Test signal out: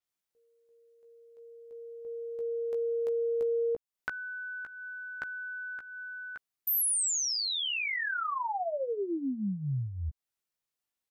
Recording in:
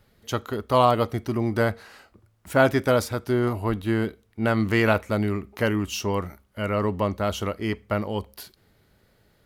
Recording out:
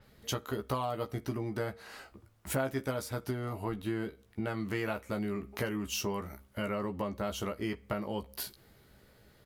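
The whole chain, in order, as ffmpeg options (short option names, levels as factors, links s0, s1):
-filter_complex "[0:a]acompressor=threshold=0.0224:ratio=6,asplit=2[s0][s1];[s1]adelay=15,volume=0.531[s2];[s0][s2]amix=inputs=2:normalize=0,adynamicequalizer=threshold=0.00316:dfrequency=7000:dqfactor=0.7:tfrequency=7000:tqfactor=0.7:attack=5:release=100:ratio=0.375:range=2.5:mode=boostabove:tftype=highshelf"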